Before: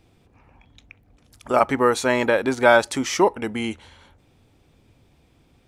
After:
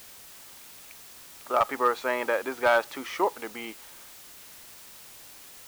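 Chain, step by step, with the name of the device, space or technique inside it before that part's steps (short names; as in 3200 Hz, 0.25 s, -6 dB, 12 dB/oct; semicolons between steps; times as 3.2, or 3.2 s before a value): drive-through speaker (BPF 420–3000 Hz; bell 1200 Hz +5.5 dB 0.26 oct; hard clip -7.5 dBFS, distortion -18 dB; white noise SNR 17 dB); gain -6 dB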